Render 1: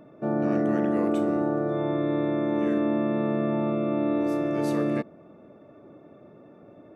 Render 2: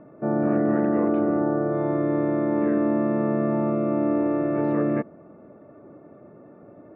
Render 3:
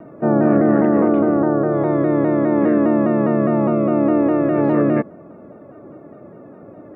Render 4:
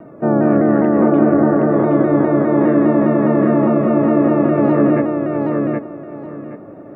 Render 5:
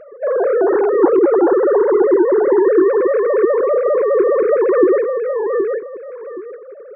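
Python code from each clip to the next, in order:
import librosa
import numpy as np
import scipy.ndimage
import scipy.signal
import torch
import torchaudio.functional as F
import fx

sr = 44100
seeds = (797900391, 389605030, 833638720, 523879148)

y1 = scipy.signal.sosfilt(scipy.signal.butter(4, 2000.0, 'lowpass', fs=sr, output='sos'), x)
y1 = y1 * librosa.db_to_amplitude(2.5)
y2 = fx.rider(y1, sr, range_db=10, speed_s=2.0)
y2 = fx.vibrato_shape(y2, sr, shape='saw_down', rate_hz=4.9, depth_cents=100.0)
y2 = y2 * librosa.db_to_amplitude(6.5)
y3 = fx.echo_feedback(y2, sr, ms=771, feedback_pct=23, wet_db=-3.5)
y3 = y3 * librosa.db_to_amplitude(1.0)
y4 = fx.sine_speech(y3, sr)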